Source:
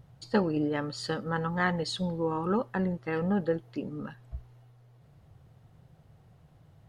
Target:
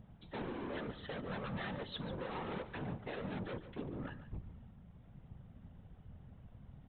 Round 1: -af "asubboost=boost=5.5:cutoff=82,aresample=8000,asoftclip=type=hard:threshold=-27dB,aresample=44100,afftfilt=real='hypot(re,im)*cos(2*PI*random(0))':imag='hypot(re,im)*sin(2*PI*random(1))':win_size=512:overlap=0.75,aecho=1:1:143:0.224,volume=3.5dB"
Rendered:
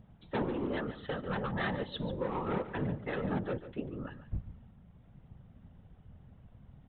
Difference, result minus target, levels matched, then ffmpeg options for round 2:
hard clipping: distortion −7 dB
-af "asubboost=boost=5.5:cutoff=82,aresample=8000,asoftclip=type=hard:threshold=-38dB,aresample=44100,afftfilt=real='hypot(re,im)*cos(2*PI*random(0))':imag='hypot(re,im)*sin(2*PI*random(1))':win_size=512:overlap=0.75,aecho=1:1:143:0.224,volume=3.5dB"

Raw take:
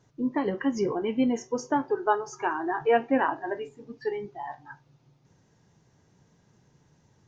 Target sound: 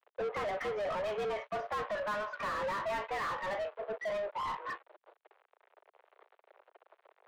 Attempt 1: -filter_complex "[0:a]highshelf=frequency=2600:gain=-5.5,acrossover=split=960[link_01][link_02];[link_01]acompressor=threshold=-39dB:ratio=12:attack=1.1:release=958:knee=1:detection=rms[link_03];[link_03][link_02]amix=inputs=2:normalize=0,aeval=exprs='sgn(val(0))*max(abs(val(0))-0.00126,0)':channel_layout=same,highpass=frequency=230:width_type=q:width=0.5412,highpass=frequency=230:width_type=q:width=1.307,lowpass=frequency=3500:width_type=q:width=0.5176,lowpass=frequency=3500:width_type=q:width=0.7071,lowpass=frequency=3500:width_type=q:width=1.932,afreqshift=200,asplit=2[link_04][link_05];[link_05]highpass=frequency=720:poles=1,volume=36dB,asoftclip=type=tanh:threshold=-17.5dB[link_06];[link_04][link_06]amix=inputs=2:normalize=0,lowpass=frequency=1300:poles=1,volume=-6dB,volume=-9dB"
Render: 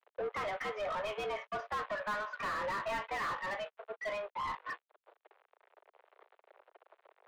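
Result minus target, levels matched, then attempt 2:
downward compressor: peak gain reduction +9 dB
-filter_complex "[0:a]highshelf=frequency=2600:gain=-5.5,acrossover=split=960[link_01][link_02];[link_01]acompressor=threshold=-29dB:ratio=12:attack=1.1:release=958:knee=1:detection=rms[link_03];[link_03][link_02]amix=inputs=2:normalize=0,aeval=exprs='sgn(val(0))*max(abs(val(0))-0.00126,0)':channel_layout=same,highpass=frequency=230:width_type=q:width=0.5412,highpass=frequency=230:width_type=q:width=1.307,lowpass=frequency=3500:width_type=q:width=0.5176,lowpass=frequency=3500:width_type=q:width=0.7071,lowpass=frequency=3500:width_type=q:width=1.932,afreqshift=200,asplit=2[link_04][link_05];[link_05]highpass=frequency=720:poles=1,volume=36dB,asoftclip=type=tanh:threshold=-17.5dB[link_06];[link_04][link_06]amix=inputs=2:normalize=0,lowpass=frequency=1300:poles=1,volume=-6dB,volume=-9dB"

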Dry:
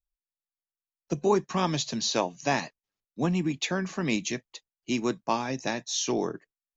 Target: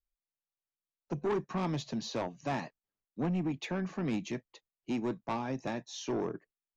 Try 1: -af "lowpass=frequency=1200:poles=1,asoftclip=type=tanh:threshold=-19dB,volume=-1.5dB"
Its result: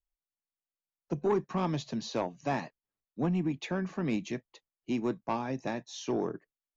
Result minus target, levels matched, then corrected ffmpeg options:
soft clipping: distortion −7 dB
-af "lowpass=frequency=1200:poles=1,asoftclip=type=tanh:threshold=-25.5dB,volume=-1.5dB"

